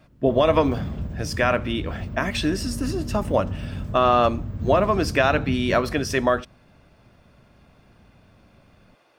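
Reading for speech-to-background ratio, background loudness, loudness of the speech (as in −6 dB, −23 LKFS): 9.0 dB, −32.0 LKFS, −23.0 LKFS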